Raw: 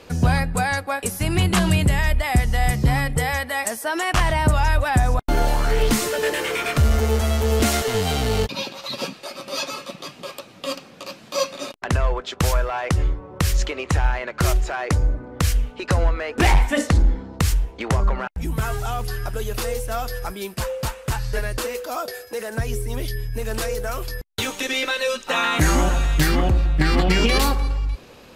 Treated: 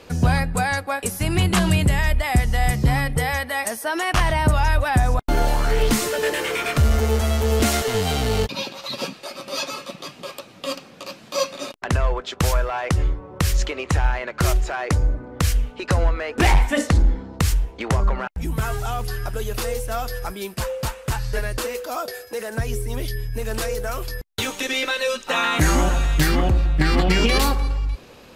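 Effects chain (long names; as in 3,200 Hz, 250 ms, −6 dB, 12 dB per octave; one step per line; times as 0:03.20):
0:02.95–0:04.99: notch filter 7,500 Hz, Q 9.7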